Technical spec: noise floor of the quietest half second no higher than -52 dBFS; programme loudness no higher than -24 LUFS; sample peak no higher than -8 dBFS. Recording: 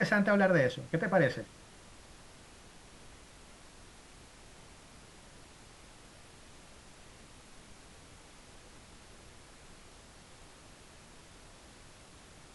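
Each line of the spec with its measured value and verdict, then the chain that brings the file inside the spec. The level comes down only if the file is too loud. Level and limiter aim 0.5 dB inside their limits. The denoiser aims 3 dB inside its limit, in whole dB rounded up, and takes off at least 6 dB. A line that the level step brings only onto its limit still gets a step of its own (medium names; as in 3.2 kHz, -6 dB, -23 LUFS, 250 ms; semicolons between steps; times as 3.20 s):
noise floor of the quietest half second -55 dBFS: pass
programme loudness -29.0 LUFS: pass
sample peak -15.0 dBFS: pass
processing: none needed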